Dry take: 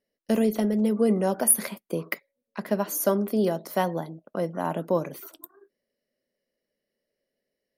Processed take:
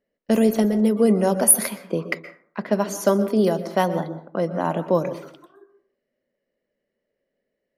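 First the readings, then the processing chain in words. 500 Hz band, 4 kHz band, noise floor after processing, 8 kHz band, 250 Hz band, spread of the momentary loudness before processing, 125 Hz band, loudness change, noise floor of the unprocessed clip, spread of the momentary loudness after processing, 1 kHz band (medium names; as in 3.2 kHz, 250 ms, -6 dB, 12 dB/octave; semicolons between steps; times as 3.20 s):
+5.0 dB, +5.0 dB, -80 dBFS, +5.0 dB, +5.0 dB, 14 LU, +5.0 dB, +5.0 dB, -84 dBFS, 14 LU, +4.5 dB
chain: level-controlled noise filter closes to 2.4 kHz, open at -19 dBFS; dynamic bell 6.7 kHz, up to +3 dB, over -48 dBFS, Q 1.3; plate-style reverb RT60 0.54 s, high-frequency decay 0.45×, pre-delay 110 ms, DRR 12.5 dB; trim +4.5 dB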